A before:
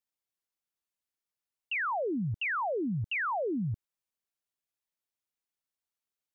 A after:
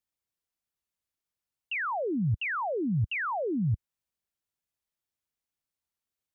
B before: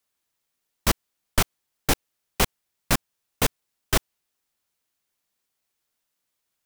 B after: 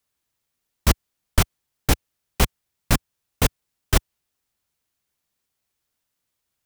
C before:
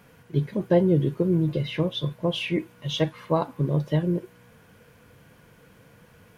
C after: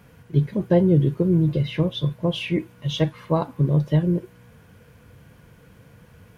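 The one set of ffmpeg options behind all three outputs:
ffmpeg -i in.wav -af "equalizer=frequency=65:width_type=o:width=2.7:gain=9" out.wav

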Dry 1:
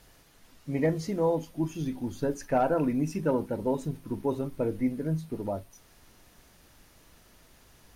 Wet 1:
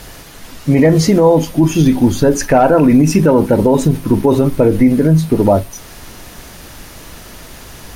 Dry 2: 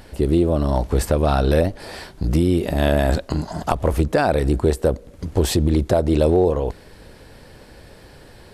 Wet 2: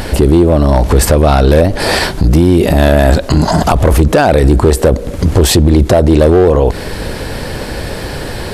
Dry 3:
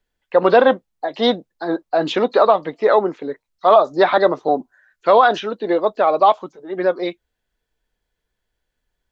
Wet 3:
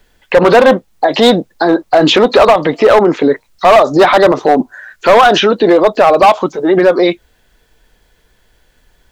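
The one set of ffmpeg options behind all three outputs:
ffmpeg -i in.wav -filter_complex "[0:a]asplit=2[link_01][link_02];[link_02]acompressor=threshold=-24dB:ratio=12,volume=1.5dB[link_03];[link_01][link_03]amix=inputs=2:normalize=0,volume=9dB,asoftclip=hard,volume=-9dB,alimiter=level_in=17.5dB:limit=-1dB:release=50:level=0:latency=1,volume=-1dB" out.wav

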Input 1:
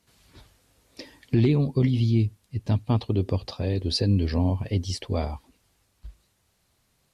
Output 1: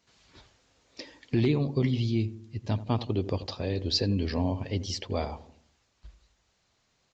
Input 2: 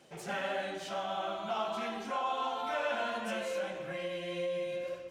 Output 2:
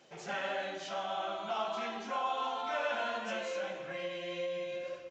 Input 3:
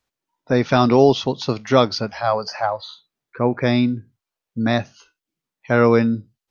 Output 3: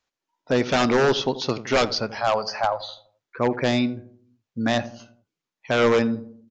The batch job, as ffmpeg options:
ffmpeg -i in.wav -filter_complex "[0:a]lowshelf=frequency=260:gain=-7.5,aeval=exprs='0.251*(abs(mod(val(0)/0.251+3,4)-2)-1)':channel_layout=same,asplit=2[link_01][link_02];[link_02]adelay=84,lowpass=frequency=850:poles=1,volume=-13dB,asplit=2[link_03][link_04];[link_04]adelay=84,lowpass=frequency=850:poles=1,volume=0.53,asplit=2[link_05][link_06];[link_06]adelay=84,lowpass=frequency=850:poles=1,volume=0.53,asplit=2[link_07][link_08];[link_08]adelay=84,lowpass=frequency=850:poles=1,volume=0.53,asplit=2[link_09][link_10];[link_10]adelay=84,lowpass=frequency=850:poles=1,volume=0.53[link_11];[link_01][link_03][link_05][link_07][link_09][link_11]amix=inputs=6:normalize=0,aresample=16000,aresample=44100" out.wav

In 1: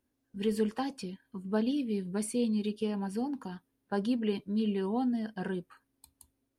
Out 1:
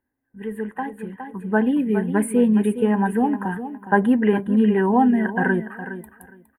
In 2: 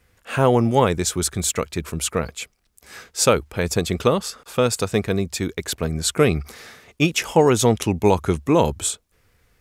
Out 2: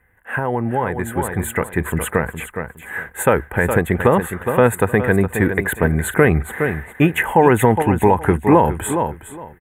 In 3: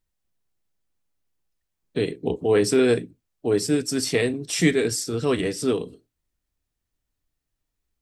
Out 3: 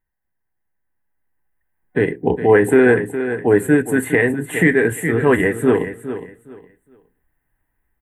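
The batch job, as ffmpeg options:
ffmpeg -i in.wav -filter_complex "[0:a]superequalizer=9b=2:11b=3.16,asplit=2[link_01][link_02];[link_02]aecho=0:1:413|826|1239:0.266|0.0585|0.0129[link_03];[link_01][link_03]amix=inputs=2:normalize=0,alimiter=limit=-9.5dB:level=0:latency=1:release=192,dynaudnorm=framelen=240:gausssize=13:maxgain=16dB,asuperstop=centerf=5100:order=4:qfactor=0.59,volume=-1dB" out.wav

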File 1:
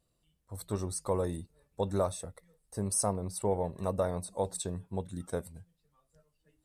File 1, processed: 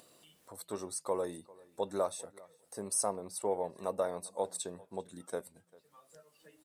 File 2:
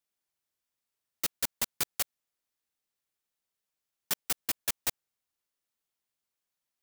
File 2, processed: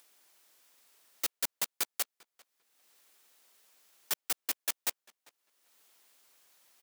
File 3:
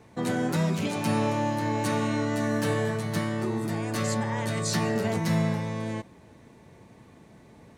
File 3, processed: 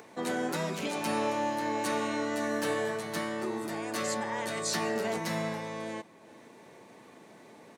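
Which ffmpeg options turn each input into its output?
ffmpeg -i in.wav -filter_complex "[0:a]highpass=310,acompressor=mode=upward:threshold=-44dB:ratio=2.5,asplit=2[link_01][link_02];[link_02]adelay=396,lowpass=frequency=4000:poles=1,volume=-23dB,asplit=2[link_03][link_04];[link_04]adelay=396,lowpass=frequency=4000:poles=1,volume=0.15[link_05];[link_03][link_05]amix=inputs=2:normalize=0[link_06];[link_01][link_06]amix=inputs=2:normalize=0,volume=-1.5dB" out.wav

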